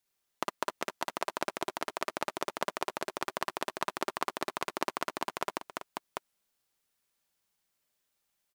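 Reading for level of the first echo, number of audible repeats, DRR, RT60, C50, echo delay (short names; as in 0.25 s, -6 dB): -4.0 dB, 4, none, none, none, 56 ms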